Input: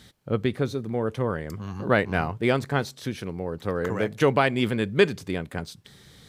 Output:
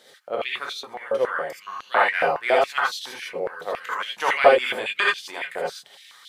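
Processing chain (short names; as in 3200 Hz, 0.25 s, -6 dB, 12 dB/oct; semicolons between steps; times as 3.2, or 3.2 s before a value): non-linear reverb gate 0.1 s rising, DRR -4 dB; stepped high-pass 7.2 Hz 520–3300 Hz; gain -3 dB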